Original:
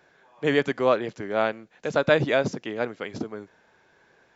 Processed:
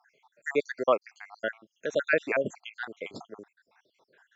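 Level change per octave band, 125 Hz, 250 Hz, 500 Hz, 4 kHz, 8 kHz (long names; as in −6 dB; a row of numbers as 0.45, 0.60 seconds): −16.5 dB, −10.5 dB, −5.5 dB, −9.5 dB, can't be measured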